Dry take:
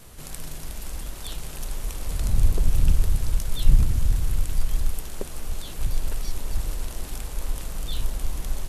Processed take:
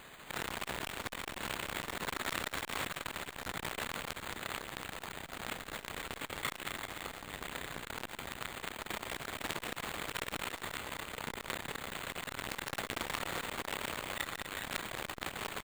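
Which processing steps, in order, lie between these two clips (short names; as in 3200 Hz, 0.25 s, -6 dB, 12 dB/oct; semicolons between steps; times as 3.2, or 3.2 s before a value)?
per-bin compression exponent 0.6; gate with hold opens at -22 dBFS; dynamic EQ 8700 Hz, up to -7 dB, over -52 dBFS, Q 1.1; in parallel at -1.5 dB: negative-ratio compressor -24 dBFS, ratio -1; on the sum: overloaded stage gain 20.5 dB; band-pass 7000 Hz, Q 0.71; granular stretch 1.8×, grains 0.14 s; on a send: bouncing-ball echo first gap 0.22 s, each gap 0.75×, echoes 5; on the sum: careless resampling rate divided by 8×, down none, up hold; core saturation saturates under 2300 Hz; gain +7.5 dB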